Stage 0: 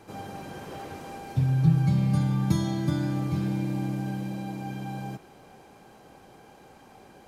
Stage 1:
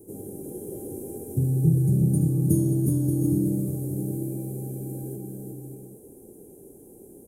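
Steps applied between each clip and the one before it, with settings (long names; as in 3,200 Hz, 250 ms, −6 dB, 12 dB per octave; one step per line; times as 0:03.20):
drawn EQ curve 190 Hz 0 dB, 400 Hz +9 dB, 720 Hz −15 dB, 1,300 Hz −30 dB, 4,400 Hz −26 dB, 9,300 Hz +14 dB
on a send: bouncing-ball delay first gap 360 ms, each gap 0.6×, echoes 5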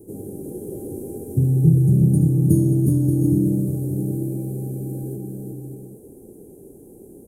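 tilt shelving filter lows +3.5 dB, about 650 Hz
level +2.5 dB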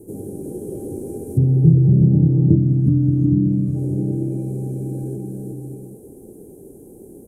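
gain on a spectral selection 0:02.56–0:03.76, 320–1,100 Hz −10 dB
treble cut that deepens with the level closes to 810 Hz, closed at −11.5 dBFS
feedback echo with a high-pass in the loop 351 ms, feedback 60%, level −20 dB
level +2.5 dB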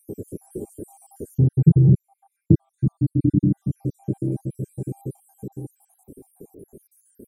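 time-frequency cells dropped at random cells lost 67%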